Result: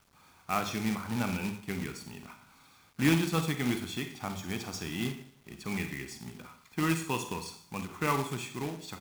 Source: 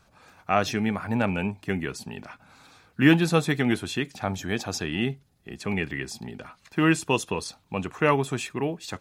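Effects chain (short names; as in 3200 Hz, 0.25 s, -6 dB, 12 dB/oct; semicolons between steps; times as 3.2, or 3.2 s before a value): notches 50/100 Hz; comb 0.9 ms, depth 44%; Schroeder reverb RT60 0.59 s, combs from 33 ms, DRR 6 dB; companded quantiser 4-bit; ending taper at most 210 dB/s; gain -9 dB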